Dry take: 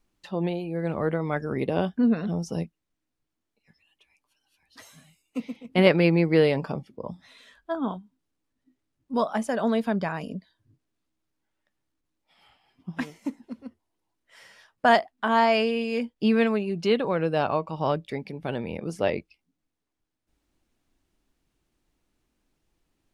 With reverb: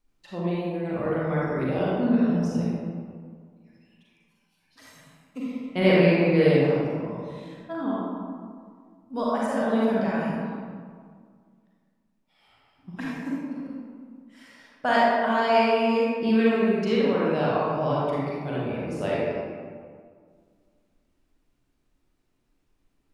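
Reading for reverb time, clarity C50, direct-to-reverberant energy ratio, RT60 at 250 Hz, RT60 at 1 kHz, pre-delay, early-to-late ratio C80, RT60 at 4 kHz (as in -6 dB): 1.9 s, -4.5 dB, -7.0 dB, 2.2 s, 2.0 s, 36 ms, -1.0 dB, 1.0 s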